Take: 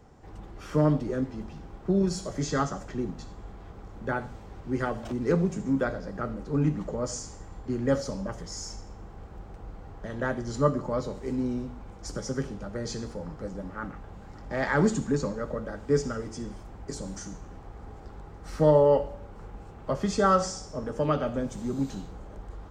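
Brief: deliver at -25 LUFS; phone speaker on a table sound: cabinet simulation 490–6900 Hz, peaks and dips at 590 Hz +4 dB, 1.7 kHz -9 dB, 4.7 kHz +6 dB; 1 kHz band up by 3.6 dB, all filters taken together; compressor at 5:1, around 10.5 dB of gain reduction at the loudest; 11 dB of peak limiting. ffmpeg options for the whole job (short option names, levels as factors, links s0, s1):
-af "equalizer=f=1000:t=o:g=5.5,acompressor=threshold=0.0501:ratio=5,alimiter=level_in=1.26:limit=0.0631:level=0:latency=1,volume=0.794,highpass=f=490:w=0.5412,highpass=f=490:w=1.3066,equalizer=f=590:t=q:w=4:g=4,equalizer=f=1700:t=q:w=4:g=-9,equalizer=f=4700:t=q:w=4:g=6,lowpass=f=6900:w=0.5412,lowpass=f=6900:w=1.3066,volume=5.62"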